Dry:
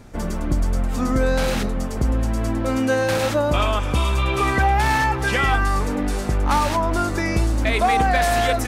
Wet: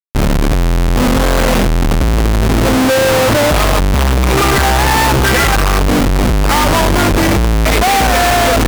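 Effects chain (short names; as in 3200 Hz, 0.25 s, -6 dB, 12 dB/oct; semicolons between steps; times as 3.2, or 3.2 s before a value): Schmitt trigger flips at -25.5 dBFS; wow and flutter 25 cents; gain +9 dB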